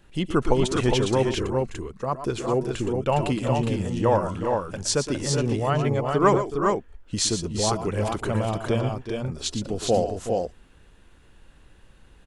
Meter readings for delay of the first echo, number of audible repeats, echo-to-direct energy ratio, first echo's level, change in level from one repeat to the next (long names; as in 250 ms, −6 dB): 116 ms, 3, −2.5 dB, −10.0 dB, repeats not evenly spaced